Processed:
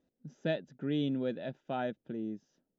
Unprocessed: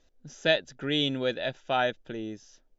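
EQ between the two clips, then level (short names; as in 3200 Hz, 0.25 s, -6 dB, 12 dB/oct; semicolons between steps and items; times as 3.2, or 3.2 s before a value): band-pass 190 Hz, Q 2; tilt +2.5 dB/oct; +9.0 dB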